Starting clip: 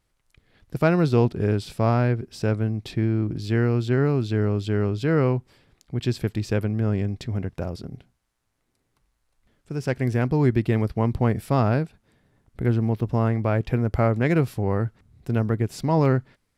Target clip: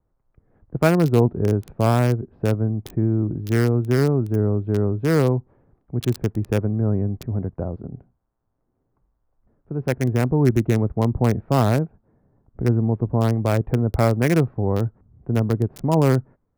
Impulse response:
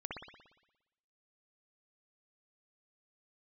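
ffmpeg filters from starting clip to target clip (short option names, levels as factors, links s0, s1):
-filter_complex "[0:a]adynamicequalizer=threshold=0.00126:dfrequency=3100:dqfactor=5.3:tfrequency=3100:tqfactor=5.3:attack=5:release=100:ratio=0.375:range=2:mode=cutabove:tftype=bell,acrossover=split=230|1200[s0][s1][s2];[s2]acrusher=bits=4:mix=0:aa=0.000001[s3];[s0][s1][s3]amix=inputs=3:normalize=0,volume=1.33"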